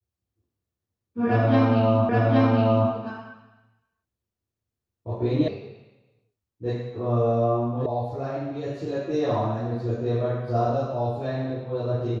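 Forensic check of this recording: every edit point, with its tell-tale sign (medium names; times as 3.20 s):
2.09 s: repeat of the last 0.82 s
5.48 s: sound stops dead
7.86 s: sound stops dead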